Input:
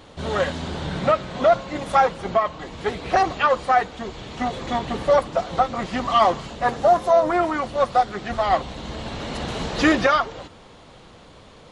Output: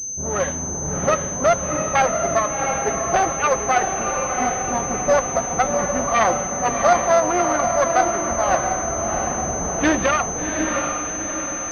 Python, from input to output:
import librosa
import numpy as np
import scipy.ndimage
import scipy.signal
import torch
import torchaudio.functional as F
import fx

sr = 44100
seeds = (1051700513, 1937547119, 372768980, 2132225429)

p1 = fx.self_delay(x, sr, depth_ms=0.21)
p2 = fx.env_lowpass(p1, sr, base_hz=310.0, full_db=-15.5)
p3 = p2 + fx.echo_diffused(p2, sr, ms=713, feedback_pct=54, wet_db=-4.0, dry=0)
y = fx.pwm(p3, sr, carrier_hz=6200.0)